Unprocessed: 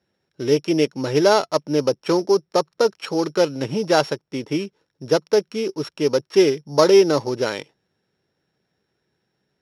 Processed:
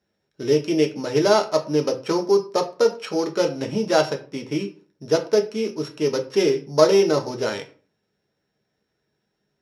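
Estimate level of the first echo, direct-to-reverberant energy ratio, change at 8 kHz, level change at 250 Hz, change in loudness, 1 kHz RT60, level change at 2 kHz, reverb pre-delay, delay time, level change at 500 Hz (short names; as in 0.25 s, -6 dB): none, 3.5 dB, -1.0 dB, -2.0 dB, -1.5 dB, 0.40 s, -2.5 dB, 3 ms, none, -1.5 dB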